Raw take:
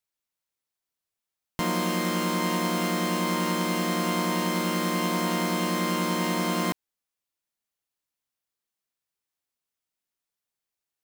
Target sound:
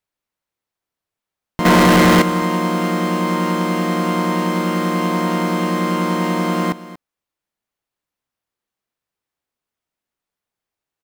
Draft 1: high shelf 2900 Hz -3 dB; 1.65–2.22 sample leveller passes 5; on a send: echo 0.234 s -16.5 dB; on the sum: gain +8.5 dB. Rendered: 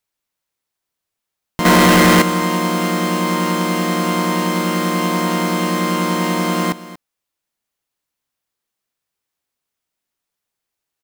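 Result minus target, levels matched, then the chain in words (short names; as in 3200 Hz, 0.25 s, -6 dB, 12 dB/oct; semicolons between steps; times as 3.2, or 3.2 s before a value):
8000 Hz band +5.0 dB
high shelf 2900 Hz -11 dB; 1.65–2.22 sample leveller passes 5; on a send: echo 0.234 s -16.5 dB; on the sum: gain +8.5 dB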